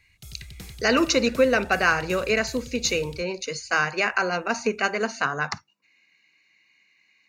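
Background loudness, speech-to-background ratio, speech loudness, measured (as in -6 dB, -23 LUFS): -43.0 LUFS, 19.0 dB, -24.0 LUFS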